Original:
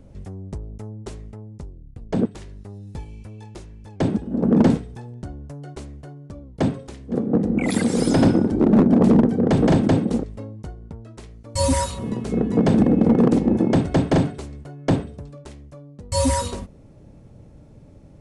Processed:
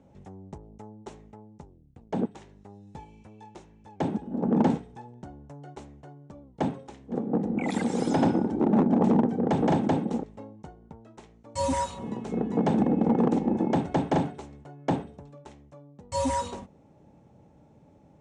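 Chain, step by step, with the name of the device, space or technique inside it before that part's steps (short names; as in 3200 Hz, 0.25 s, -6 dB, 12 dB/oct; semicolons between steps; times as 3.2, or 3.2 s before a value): car door speaker (speaker cabinet 100–7800 Hz, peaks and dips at 110 Hz -7 dB, 840 Hz +10 dB, 4700 Hz -7 dB); gain -7 dB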